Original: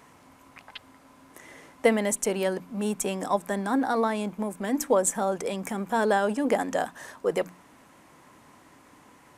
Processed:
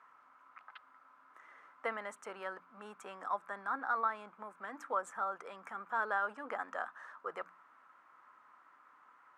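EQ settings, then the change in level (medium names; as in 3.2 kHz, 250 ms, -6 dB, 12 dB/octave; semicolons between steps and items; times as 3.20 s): band-pass filter 1.3 kHz, Q 5.5; +2.5 dB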